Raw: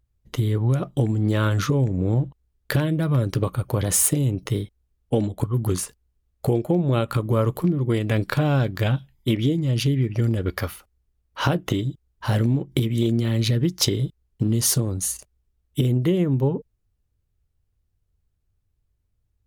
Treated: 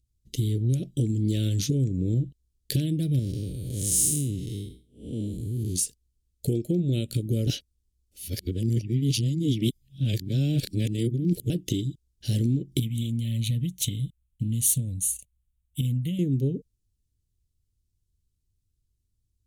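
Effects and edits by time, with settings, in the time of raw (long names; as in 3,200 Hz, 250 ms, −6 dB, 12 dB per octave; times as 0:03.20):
0:03.19–0:05.76: spectrum smeared in time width 218 ms
0:07.47–0:11.50: reverse
0:12.80–0:16.19: phaser with its sweep stopped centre 1,400 Hz, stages 6
whole clip: Chebyshev band-stop filter 320–3,500 Hz, order 2; parametric band 8,200 Hz +7.5 dB 1.7 octaves; level −3 dB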